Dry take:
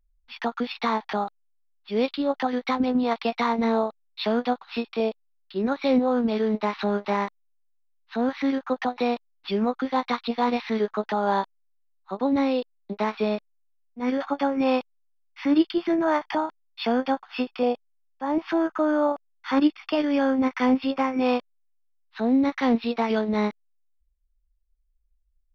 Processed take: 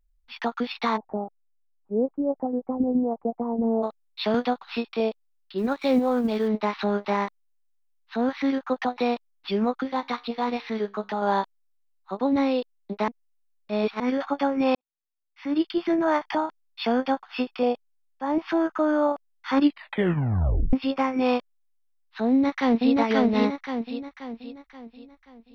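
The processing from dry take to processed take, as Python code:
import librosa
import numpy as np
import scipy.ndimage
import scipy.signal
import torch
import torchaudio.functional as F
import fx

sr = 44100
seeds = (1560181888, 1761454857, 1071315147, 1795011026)

y = fx.cheby2_lowpass(x, sr, hz=3900.0, order=4, stop_db=80, at=(0.96, 3.82), fade=0.02)
y = fx.band_squash(y, sr, depth_pct=70, at=(4.34, 4.76))
y = fx.law_mismatch(y, sr, coded='A', at=(5.57, 6.47), fade=0.02)
y = fx.comb_fb(y, sr, f0_hz=67.0, decay_s=0.37, harmonics='all', damping=0.0, mix_pct=40, at=(9.83, 11.22))
y = fx.echo_throw(y, sr, start_s=22.28, length_s=0.67, ms=530, feedback_pct=45, wet_db=-1.0)
y = fx.edit(y, sr, fx.reverse_span(start_s=13.08, length_s=0.92),
    fx.fade_in_span(start_s=14.75, length_s=1.06, curve='qua'),
    fx.tape_stop(start_s=19.63, length_s=1.1), tone=tone)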